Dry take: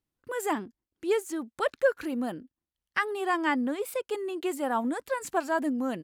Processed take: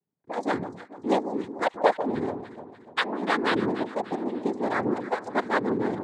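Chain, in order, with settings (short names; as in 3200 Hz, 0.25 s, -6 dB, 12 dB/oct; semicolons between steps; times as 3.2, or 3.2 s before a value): Wiener smoothing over 25 samples; noise vocoder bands 6; echo with dull and thin repeats by turns 0.147 s, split 1200 Hz, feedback 67%, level -10 dB; gain +3 dB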